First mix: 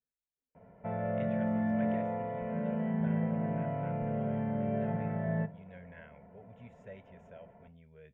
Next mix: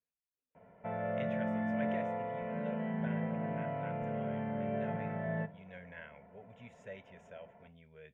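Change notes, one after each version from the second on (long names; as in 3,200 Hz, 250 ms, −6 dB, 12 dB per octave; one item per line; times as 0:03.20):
speech +3.0 dB
master: add spectral tilt +2 dB per octave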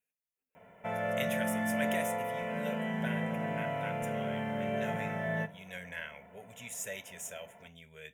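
speech: send +9.5 dB
master: remove head-to-tape spacing loss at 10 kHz 45 dB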